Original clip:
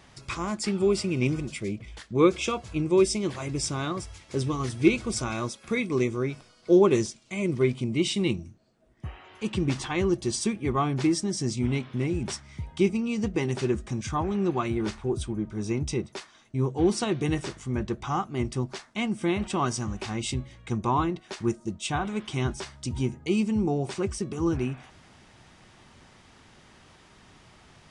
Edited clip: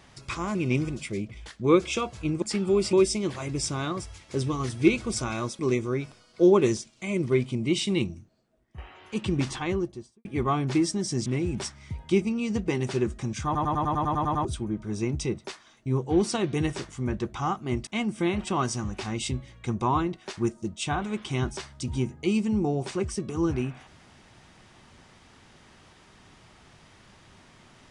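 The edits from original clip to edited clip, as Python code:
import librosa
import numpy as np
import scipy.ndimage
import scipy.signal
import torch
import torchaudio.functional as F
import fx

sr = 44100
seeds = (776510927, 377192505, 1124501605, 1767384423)

y = fx.studio_fade_out(x, sr, start_s=9.79, length_s=0.75)
y = fx.edit(y, sr, fx.move(start_s=0.55, length_s=0.51, to_s=2.93),
    fx.cut(start_s=5.59, length_s=0.29),
    fx.fade_out_to(start_s=8.42, length_s=0.65, floor_db=-11.5),
    fx.cut(start_s=11.55, length_s=0.39),
    fx.stutter_over(start_s=14.13, slice_s=0.1, count=10),
    fx.cut(start_s=18.55, length_s=0.35), tone=tone)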